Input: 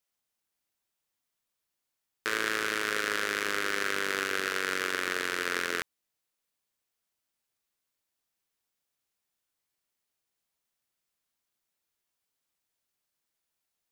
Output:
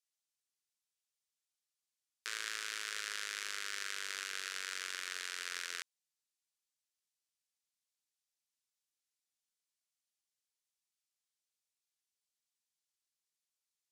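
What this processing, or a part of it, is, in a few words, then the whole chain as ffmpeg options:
piezo pickup straight into a mixer: -af "lowpass=7k,aderivative"

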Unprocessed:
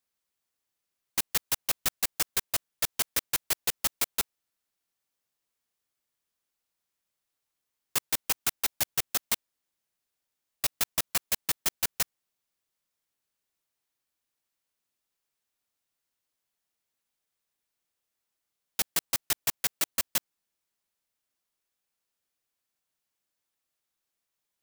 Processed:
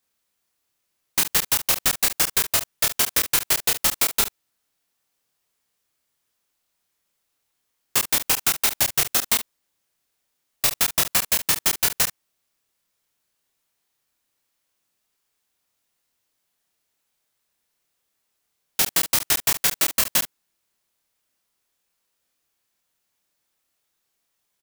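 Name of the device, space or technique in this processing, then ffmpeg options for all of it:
slapback doubling: -filter_complex "[0:a]asplit=3[a][b][c];[b]adelay=28,volume=-3dB[d];[c]adelay=71,volume=-12dB[e];[a][d][e]amix=inputs=3:normalize=0,volume=7dB"

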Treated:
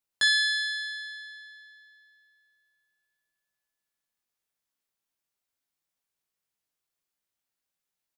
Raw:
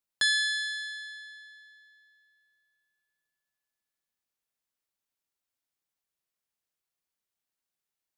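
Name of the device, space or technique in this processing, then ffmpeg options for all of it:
slapback doubling: -filter_complex "[0:a]asplit=3[a][b][c];[b]adelay=18,volume=-5dB[d];[c]adelay=62,volume=-8.5dB[e];[a][d][e]amix=inputs=3:normalize=0"

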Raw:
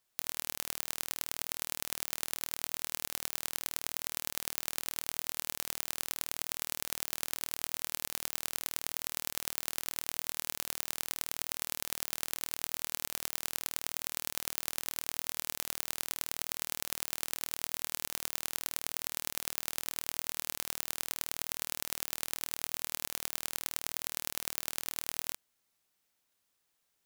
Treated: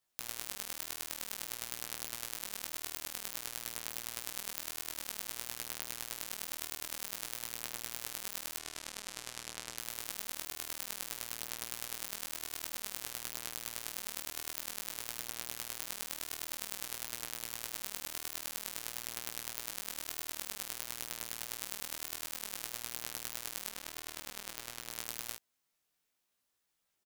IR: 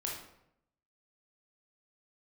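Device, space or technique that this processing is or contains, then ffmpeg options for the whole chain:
double-tracked vocal: -filter_complex "[0:a]asettb=1/sr,asplit=3[a][b][c];[a]atrim=end=8.584[d];[b]atrim=start=8.58:end=9.78,asetpts=PTS-STARTPTS,afade=t=in:d=0.004:c=qsin,afade=t=out:st=1.196:d=0.004:c=qsin,lowpass=9.2k[e];[c]atrim=start=9.776[f];[d][e]acrossfade=d=0.004:c1=hsin:c2=qsin[g];[g][f]acrossfade=d=0.004:c1=qsin:c2=hsin,asplit=2[h][i];[i]adelay=16,volume=-7dB[j];[h][j]amix=inputs=2:normalize=0,flanger=delay=16:depth=6.8:speed=0.52,asettb=1/sr,asplit=3[k][l][m];[k]atrim=end=23.704[n];[l]atrim=start=23.7:end=24.91,asetpts=PTS-STARTPTS,afade=t=in:d=0.004:c=qsin,afade=t=out:st=1.206:d=0.004:c=qsin,highshelf=f=6k:g=-6[o];[m]atrim=start=24.906[p];[n][o]acrossfade=d=0.004:c1=hsin:c2=qsin[q];[q][p]acrossfade=d=0.004:c1=qsin:c2=hsin,volume=-1dB"

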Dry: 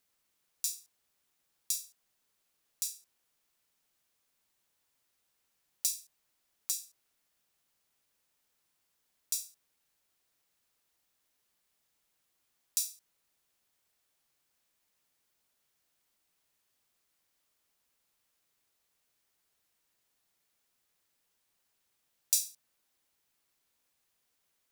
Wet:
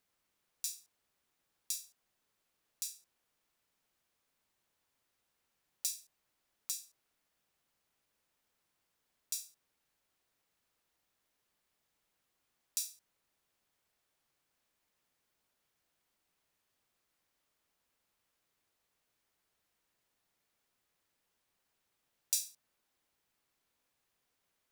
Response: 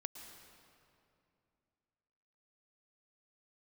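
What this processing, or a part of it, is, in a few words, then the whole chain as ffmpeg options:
behind a face mask: -af "highshelf=f=3.4k:g=-7,volume=1dB"

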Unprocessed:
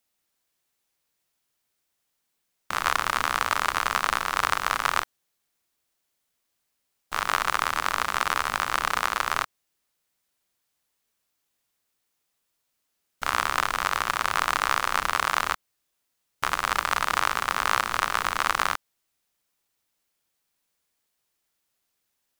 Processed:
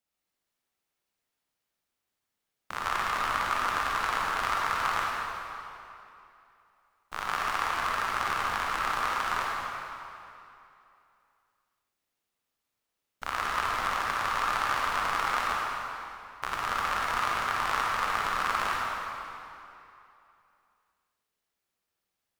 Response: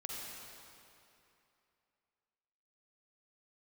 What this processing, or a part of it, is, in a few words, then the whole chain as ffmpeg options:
swimming-pool hall: -filter_complex "[1:a]atrim=start_sample=2205[a];[0:a][a]afir=irnorm=-1:irlink=0,highshelf=f=3.6k:g=-6,volume=-2.5dB"

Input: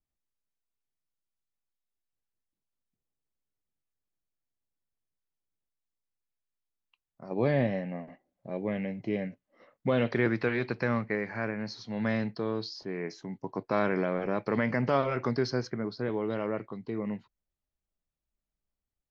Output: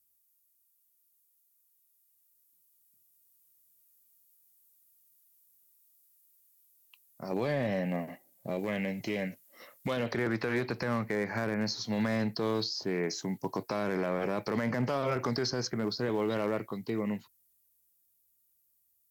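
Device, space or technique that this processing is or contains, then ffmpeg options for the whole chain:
FM broadcast chain: -filter_complex "[0:a]highpass=62,dynaudnorm=f=320:g=17:m=5.5dB,acrossover=split=610|1500[a][b][c];[a]acompressor=threshold=-26dB:ratio=4[d];[b]acompressor=threshold=-30dB:ratio=4[e];[c]acompressor=threshold=-44dB:ratio=4[f];[d][e][f]amix=inputs=3:normalize=0,aemphasis=mode=production:type=50fm,alimiter=limit=-21.5dB:level=0:latency=1:release=23,asoftclip=type=hard:threshold=-23dB,lowpass=f=15k:w=0.5412,lowpass=f=15k:w=1.3066,aemphasis=mode=production:type=50fm,asettb=1/sr,asplit=3[g][h][i];[g]atrim=end=8.594[j];[h]atrim=start=8.59:end=9.97,asetpts=PTS-STARTPTS,afade=t=in:d=0.004:c=qsin,afade=t=out:st=1.376:d=0.004:c=qsin,tiltshelf=f=1.1k:g=-3.5[k];[i]atrim=start=9.966[l];[j][k]acrossfade=d=0.004:c1=hsin:c2=qsin[m];[m][l]acrossfade=d=0.004:c1=qsin:c2=hsin"

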